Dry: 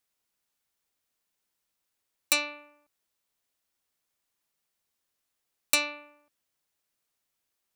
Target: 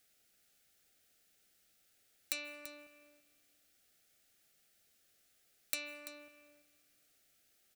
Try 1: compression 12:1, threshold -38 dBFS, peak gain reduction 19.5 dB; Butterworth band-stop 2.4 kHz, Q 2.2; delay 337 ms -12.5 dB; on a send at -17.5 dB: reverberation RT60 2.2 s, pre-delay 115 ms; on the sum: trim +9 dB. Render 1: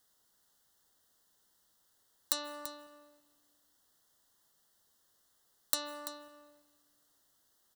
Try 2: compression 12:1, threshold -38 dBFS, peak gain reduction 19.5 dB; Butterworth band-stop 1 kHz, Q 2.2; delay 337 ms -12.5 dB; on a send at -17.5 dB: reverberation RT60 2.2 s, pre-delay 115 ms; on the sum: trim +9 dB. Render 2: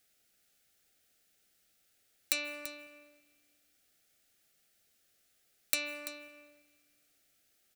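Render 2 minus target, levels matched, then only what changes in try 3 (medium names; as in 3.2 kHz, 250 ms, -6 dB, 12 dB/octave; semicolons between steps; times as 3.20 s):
compression: peak gain reduction -7 dB
change: compression 12:1, threshold -45.5 dBFS, peak gain reduction 26.5 dB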